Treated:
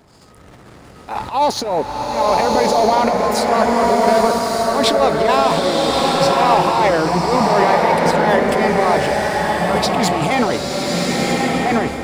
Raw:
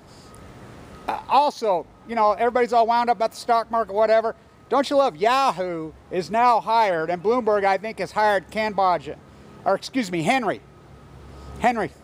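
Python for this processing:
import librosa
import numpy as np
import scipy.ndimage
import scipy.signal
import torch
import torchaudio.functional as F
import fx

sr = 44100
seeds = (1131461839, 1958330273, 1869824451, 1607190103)

y = fx.transient(x, sr, attack_db=-11, sustain_db=11)
y = fx.leveller(y, sr, passes=1)
y = fx.rev_bloom(y, sr, seeds[0], attack_ms=1210, drr_db=-2.5)
y = y * 10.0 ** (-1.0 / 20.0)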